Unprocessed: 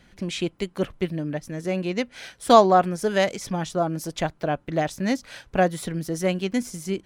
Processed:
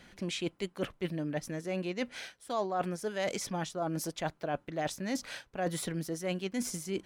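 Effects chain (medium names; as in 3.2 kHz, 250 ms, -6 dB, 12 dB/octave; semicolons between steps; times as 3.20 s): bass shelf 150 Hz -8.5 dB; reverse; compression 6:1, threshold -33 dBFS, peak gain reduction 22.5 dB; reverse; trim +1.5 dB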